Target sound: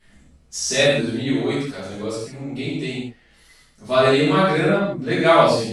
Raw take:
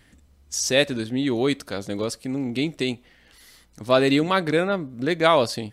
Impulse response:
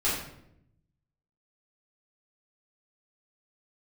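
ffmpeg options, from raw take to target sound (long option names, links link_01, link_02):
-filter_complex "[0:a]asettb=1/sr,asplit=3[link_01][link_02][link_03];[link_01]atrim=end=1.294[link_04];[link_02]atrim=start=1.29:end=3.84,asetpts=PTS-STARTPTS,afade=type=in:duration=0.004:curve=qsin,afade=type=out:start_time=2.546:duration=0.004:curve=qsin,flanger=delay=5.8:depth=1.7:regen=-49:speed=1:shape=sinusoidal[link_05];[link_03]atrim=start=3.836[link_06];[link_04][link_05]acrossfade=duration=0.004:curve1=hsin:curve2=qsin[link_07];[link_07][link_06]acrossfade=duration=0.004:curve1=qsin:curve2=hsin[link_08];[1:a]atrim=start_sample=2205,atrim=end_sample=4410,asetrate=22932,aresample=44100[link_09];[link_08][link_09]afir=irnorm=-1:irlink=0,volume=-11dB"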